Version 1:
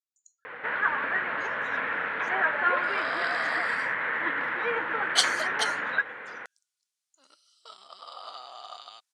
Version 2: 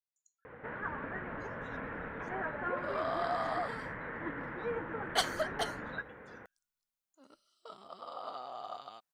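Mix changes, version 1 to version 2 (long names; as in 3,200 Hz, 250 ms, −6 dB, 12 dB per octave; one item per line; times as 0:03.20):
first sound −11.0 dB
master: remove meter weighting curve ITU-R 468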